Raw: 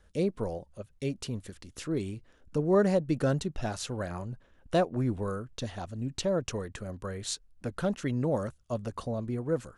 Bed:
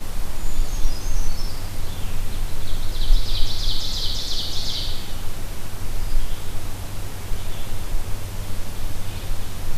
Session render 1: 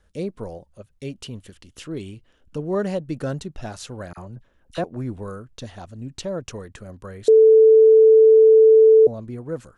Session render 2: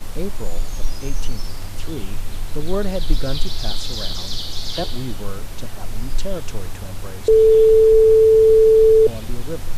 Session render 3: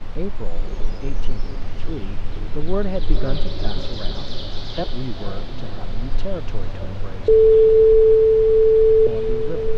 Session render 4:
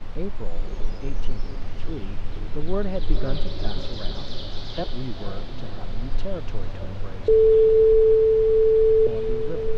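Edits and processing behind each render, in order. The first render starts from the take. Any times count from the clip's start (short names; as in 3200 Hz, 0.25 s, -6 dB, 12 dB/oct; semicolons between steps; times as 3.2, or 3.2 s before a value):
1.08–3 bell 3000 Hz +8 dB 0.34 oct; 4.13–4.84 dispersion lows, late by 41 ms, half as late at 1400 Hz; 7.28–9.07 bleep 441 Hz -8 dBFS
add bed -1.5 dB
air absorption 240 m; diffused feedback echo 0.499 s, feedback 62%, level -8.5 dB
gain -3.5 dB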